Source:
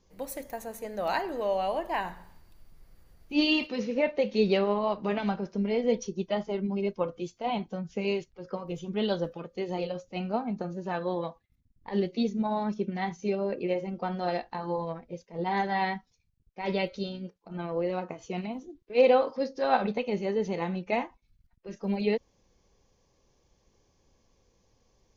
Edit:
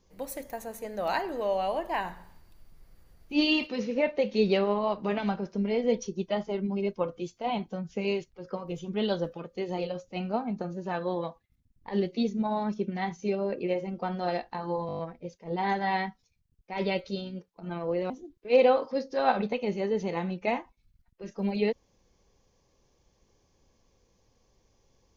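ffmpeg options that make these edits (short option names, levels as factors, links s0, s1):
-filter_complex "[0:a]asplit=8[s0][s1][s2][s3][s4][s5][s6][s7];[s0]atrim=end=14.892[s8];[s1]atrim=start=14.868:end=14.892[s9];[s2]atrim=start=14.868:end=14.892[s10];[s3]atrim=start=14.868:end=14.892[s11];[s4]atrim=start=14.868:end=14.892[s12];[s5]atrim=start=14.868:end=14.892[s13];[s6]atrim=start=14.868:end=17.982[s14];[s7]atrim=start=18.548[s15];[s8][s9]acrossfade=d=0.004:c1=hsin:c2=hsin[s16];[s16][s10]acrossfade=d=0.004:c1=hsin:c2=hsin[s17];[s17][s11]acrossfade=d=0.004:c1=hsin:c2=hsin[s18];[s18][s12]acrossfade=d=0.004:c1=hsin:c2=hsin[s19];[s19][s13]acrossfade=d=0.004:c1=hsin:c2=hsin[s20];[s20][s14]acrossfade=d=0.004:c1=hsin:c2=hsin[s21];[s21][s15]acrossfade=d=0.004:c1=hsin:c2=hsin"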